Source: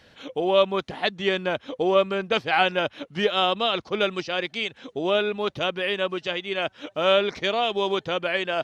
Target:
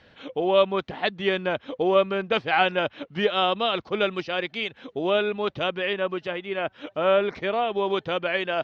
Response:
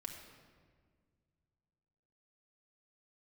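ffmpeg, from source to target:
-filter_complex "[0:a]lowpass=3.6k,asettb=1/sr,asplit=3[a][b][c];[a]atrim=end=5.934[d];[b]atrim=start=5.93:end=7.9,asetpts=PTS-STARTPTS,afade=t=in:d=0.004:c=qsin,afade=t=out:st=1.966:d=0.004:c=qsin,acrossover=split=2500[e][f];[f]acompressor=threshold=-44dB:ratio=4:attack=1:release=60[g];[e][g]amix=inputs=2:normalize=0[h];[c]atrim=start=7.896[i];[d][h]acrossfade=d=0.004:c1=hsin:c2=qsin[j];[j][i]acrossfade=d=0.004:c1=qsin:c2=hsin"

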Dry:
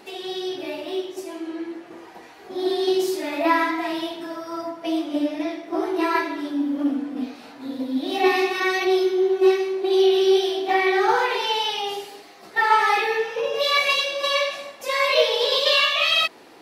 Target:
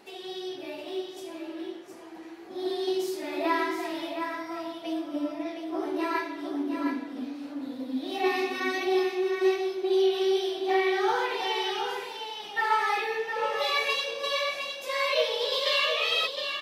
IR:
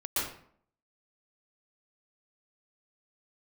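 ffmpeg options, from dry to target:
-filter_complex "[0:a]asettb=1/sr,asplit=3[a][b][c];[a]atrim=end=4.934[d];[b]atrim=start=4.93:end=5.46,asetpts=PTS-STARTPTS,afade=t=in:d=0.004:c=qsin,afade=t=out:st=0.526:d=0.004:c=qsin,equalizer=f=5.5k:t=o:w=2.2:g=-5[e];[c]atrim=start=5.456[f];[d][e]acrossfade=d=0.004:c1=hsin:c2=qsin[g];[g][f]acrossfade=d=0.004:c1=qsin:c2=hsin,aecho=1:1:713:0.473,volume=-7.5dB"

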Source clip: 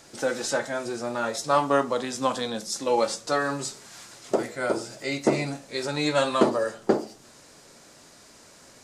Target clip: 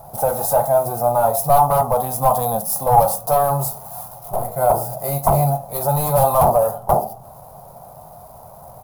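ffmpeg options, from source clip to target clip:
-filter_complex "[0:a]asettb=1/sr,asplit=3[a][b][c];[a]atrim=end=4.084[d];[b]atrim=start=4.08:end=4.56,asetpts=PTS-STARTPTS,afade=t=in:d=0.004:c=qsin,afade=t=out:st=0.476:d=0.004:c=qsin,aeval=exprs='(tanh(44.7*val(0)+0.45)-tanh(0.45))/44.7':c=same[e];[c]atrim=start=4.556[f];[d][e]acrossfade=d=0.004:c1=hsin:c2=qsin[g];[g][f]acrossfade=d=0.004:c1=qsin:c2=hsin,aeval=exprs='0.562*sin(PI/2*5.62*val(0)/0.562)':c=same,adynamicsmooth=sensitivity=5:basefreq=2.4k,firequalizer=gain_entry='entry(140,0);entry(290,-25);entry(720,6);entry(1700,-29);entry(7500,-17);entry(11000,14)':delay=0.05:min_phase=1,volume=-1dB"

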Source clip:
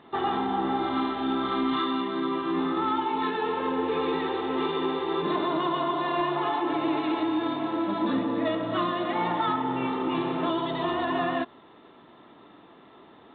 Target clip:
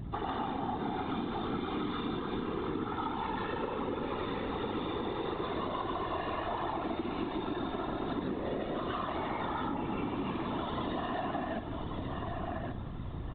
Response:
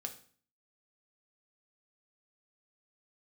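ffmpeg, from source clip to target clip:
-filter_complex "[0:a]asplit=2[a][b];[1:a]atrim=start_sample=2205,adelay=146[c];[b][c]afir=irnorm=-1:irlink=0,volume=6dB[d];[a][d]amix=inputs=2:normalize=0,aeval=exprs='val(0)+0.0224*(sin(2*PI*60*n/s)+sin(2*PI*2*60*n/s)/2+sin(2*PI*3*60*n/s)/3+sin(2*PI*4*60*n/s)/4+sin(2*PI*5*60*n/s)/5)':c=same,asplit=2[e][f];[f]adelay=1132,lowpass=f=3.4k:p=1,volume=-11dB,asplit=2[g][h];[h]adelay=1132,lowpass=f=3.4k:p=1,volume=0.24,asplit=2[i][j];[j]adelay=1132,lowpass=f=3.4k:p=1,volume=0.24[k];[e][g][i][k]amix=inputs=4:normalize=0,afftfilt=real='hypot(re,im)*cos(2*PI*random(0))':imag='hypot(re,im)*sin(2*PI*random(1))':win_size=512:overlap=0.75,acompressor=threshold=-32dB:ratio=6"

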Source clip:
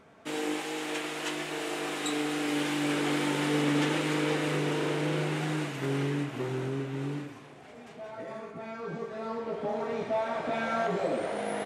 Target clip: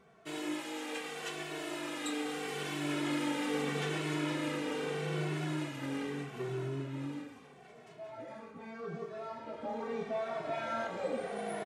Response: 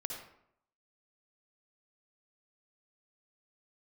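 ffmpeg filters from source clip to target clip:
-filter_complex "[0:a]asplit=2[a][b];[b]adelay=2.2,afreqshift=-0.79[c];[a][c]amix=inputs=2:normalize=1,volume=-3dB"

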